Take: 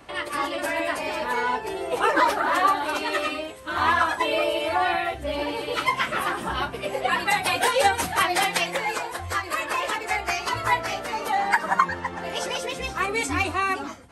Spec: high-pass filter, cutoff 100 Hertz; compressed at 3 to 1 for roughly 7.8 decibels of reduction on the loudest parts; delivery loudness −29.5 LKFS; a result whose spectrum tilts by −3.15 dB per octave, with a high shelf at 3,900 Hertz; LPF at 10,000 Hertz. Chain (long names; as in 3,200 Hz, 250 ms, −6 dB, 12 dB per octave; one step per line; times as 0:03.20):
high-pass filter 100 Hz
low-pass filter 10,000 Hz
high-shelf EQ 3,900 Hz −4.5 dB
downward compressor 3 to 1, threshold −25 dBFS
level −1 dB